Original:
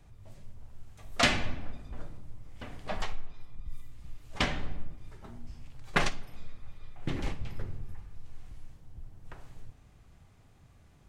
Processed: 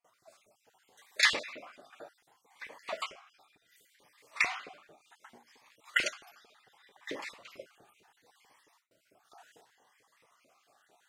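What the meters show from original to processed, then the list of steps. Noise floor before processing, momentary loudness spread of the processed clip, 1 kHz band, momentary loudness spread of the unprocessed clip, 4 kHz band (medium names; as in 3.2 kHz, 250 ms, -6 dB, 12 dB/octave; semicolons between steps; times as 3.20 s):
-59 dBFS, 25 LU, -5.0 dB, 23 LU, 0.0 dB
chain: random holes in the spectrogram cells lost 33%; gate with hold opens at -57 dBFS; peaking EQ 66 Hz -11 dB 1.1 oct; LFO high-pass saw up 4.5 Hz 410–2300 Hz; Shepard-style phaser rising 0.68 Hz; trim +2.5 dB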